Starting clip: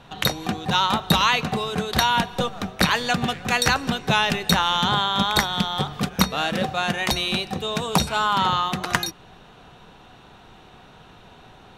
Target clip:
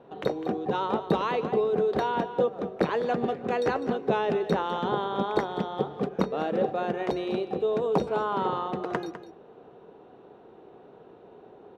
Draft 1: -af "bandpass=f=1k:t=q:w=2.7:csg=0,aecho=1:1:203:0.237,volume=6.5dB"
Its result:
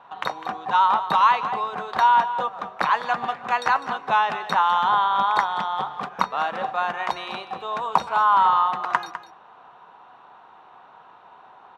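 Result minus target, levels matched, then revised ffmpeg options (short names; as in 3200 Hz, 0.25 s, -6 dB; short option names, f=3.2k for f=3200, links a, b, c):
500 Hz band -14.0 dB
-af "bandpass=f=420:t=q:w=2.7:csg=0,aecho=1:1:203:0.237,volume=6.5dB"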